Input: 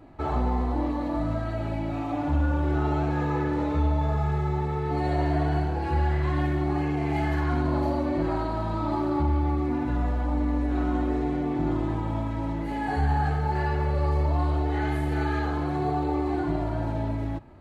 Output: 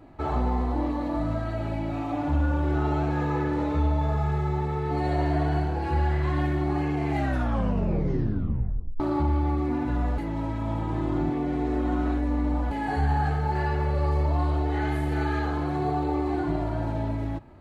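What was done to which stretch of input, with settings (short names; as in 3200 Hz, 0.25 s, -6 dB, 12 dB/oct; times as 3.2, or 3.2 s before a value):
7.1 tape stop 1.90 s
10.18–12.71 reverse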